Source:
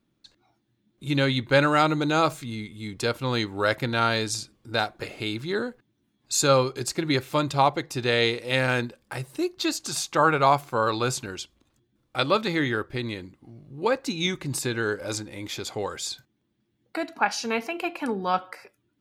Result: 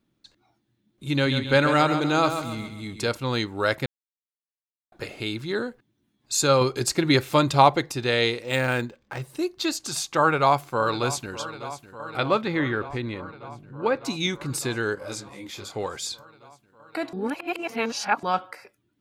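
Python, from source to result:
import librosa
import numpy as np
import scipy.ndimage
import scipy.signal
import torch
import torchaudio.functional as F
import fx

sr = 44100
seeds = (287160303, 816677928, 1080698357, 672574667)

y = fx.echo_feedback(x, sr, ms=134, feedback_pct=42, wet_db=-8.5, at=(1.13, 3.15))
y = fx.resample_linear(y, sr, factor=4, at=(8.42, 9.22))
y = fx.echo_throw(y, sr, start_s=10.19, length_s=1.16, ms=600, feedback_pct=80, wet_db=-14.5)
y = fx.bass_treble(y, sr, bass_db=1, treble_db=-13, at=(12.17, 14.05))
y = fx.detune_double(y, sr, cents=23, at=(14.95, 15.75))
y = fx.edit(y, sr, fx.silence(start_s=3.86, length_s=1.06),
    fx.clip_gain(start_s=6.61, length_s=1.31, db=4.5),
    fx.reverse_span(start_s=17.13, length_s=1.1), tone=tone)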